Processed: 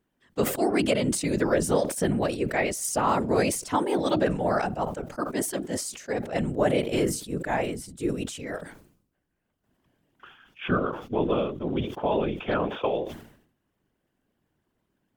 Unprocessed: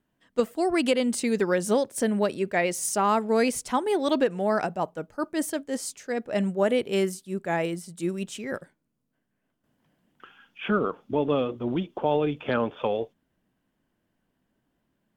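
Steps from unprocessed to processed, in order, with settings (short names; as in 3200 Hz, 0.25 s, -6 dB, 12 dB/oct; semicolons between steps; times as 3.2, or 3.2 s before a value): whisperiser; sustainer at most 87 dB/s; gain -1 dB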